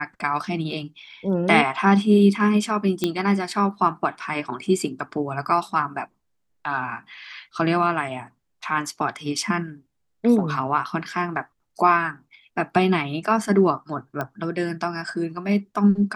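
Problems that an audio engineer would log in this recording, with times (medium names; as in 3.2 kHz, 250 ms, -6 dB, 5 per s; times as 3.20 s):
3.04 s: pop -8 dBFS
14.21 s: pop -14 dBFS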